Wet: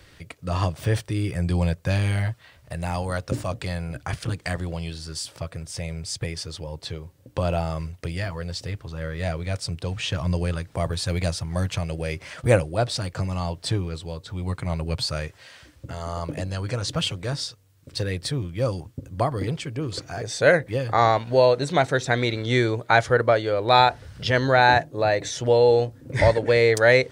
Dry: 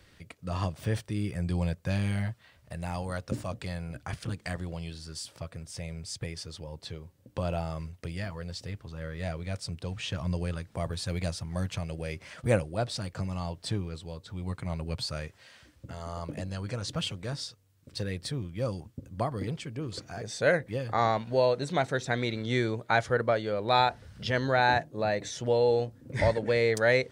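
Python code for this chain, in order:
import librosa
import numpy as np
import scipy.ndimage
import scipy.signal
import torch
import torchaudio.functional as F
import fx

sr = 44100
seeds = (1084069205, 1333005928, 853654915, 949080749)

y = fx.peak_eq(x, sr, hz=210.0, db=-11.5, octaves=0.21)
y = F.gain(torch.from_numpy(y), 7.5).numpy()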